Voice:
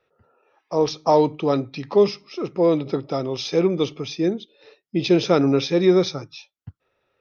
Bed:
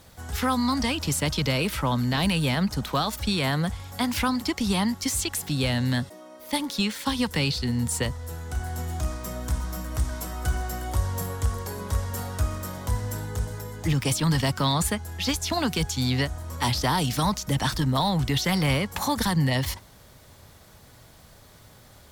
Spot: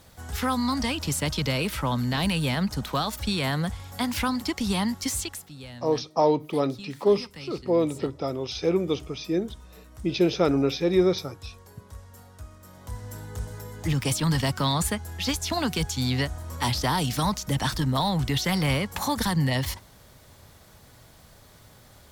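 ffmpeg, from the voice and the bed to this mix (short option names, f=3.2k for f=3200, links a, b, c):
-filter_complex "[0:a]adelay=5100,volume=-4.5dB[a];[1:a]volume=14.5dB,afade=t=out:st=5.12:d=0.37:silence=0.16788,afade=t=in:st=12.59:d=1.42:silence=0.158489[b];[a][b]amix=inputs=2:normalize=0"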